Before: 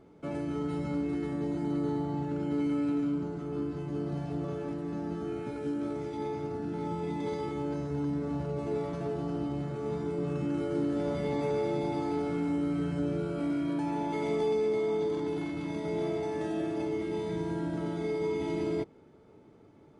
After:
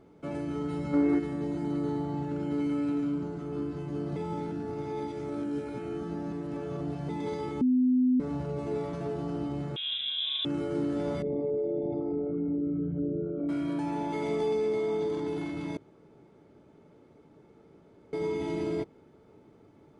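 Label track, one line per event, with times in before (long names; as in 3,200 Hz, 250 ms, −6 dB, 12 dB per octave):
0.940000	1.190000	gain on a spectral selection 270–2,300 Hz +8 dB
4.160000	7.090000	reverse
7.610000	8.200000	beep over 253 Hz −20.5 dBFS
9.760000	10.450000	voice inversion scrambler carrier 3,700 Hz
11.220000	13.490000	spectral envelope exaggerated exponent 2
15.770000	18.130000	fill with room tone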